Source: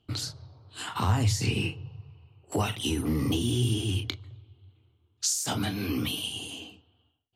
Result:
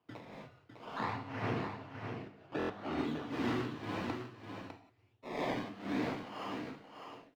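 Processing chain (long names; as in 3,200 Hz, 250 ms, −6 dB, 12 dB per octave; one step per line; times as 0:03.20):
sample-and-hold swept by an LFO 22×, swing 100% 0.59 Hz
0:00.86–0:02.98: high-shelf EQ 5,200 Hz −12 dB
reverb whose tail is shaped and stops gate 200 ms flat, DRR −2 dB
amplitude tremolo 2 Hz, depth 79%
three-way crossover with the lows and the highs turned down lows −17 dB, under 170 Hz, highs −21 dB, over 4,500 Hz
mains-hum notches 50/100 Hz
single-tap delay 603 ms −7 dB
buffer that repeats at 0:02.58, samples 1,024, times 4
level −6.5 dB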